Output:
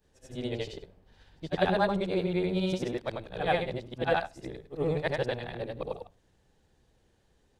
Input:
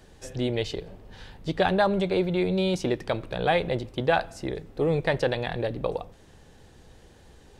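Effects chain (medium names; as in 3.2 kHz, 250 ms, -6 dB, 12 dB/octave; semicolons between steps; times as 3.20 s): short-time spectra conjugated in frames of 203 ms; upward expansion 1.5:1, over -48 dBFS; trim +1 dB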